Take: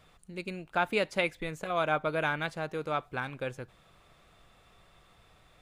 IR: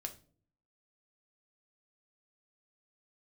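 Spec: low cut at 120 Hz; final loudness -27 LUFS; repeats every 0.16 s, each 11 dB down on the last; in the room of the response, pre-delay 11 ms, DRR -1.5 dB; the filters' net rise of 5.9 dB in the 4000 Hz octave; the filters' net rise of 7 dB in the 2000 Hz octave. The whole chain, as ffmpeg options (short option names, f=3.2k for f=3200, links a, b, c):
-filter_complex "[0:a]highpass=120,equalizer=f=2k:t=o:g=8.5,equalizer=f=4k:t=o:g=4,aecho=1:1:160|320|480:0.282|0.0789|0.0221,asplit=2[a][b];[1:a]atrim=start_sample=2205,adelay=11[c];[b][c]afir=irnorm=-1:irlink=0,volume=4dB[d];[a][d]amix=inputs=2:normalize=0,volume=-3.5dB"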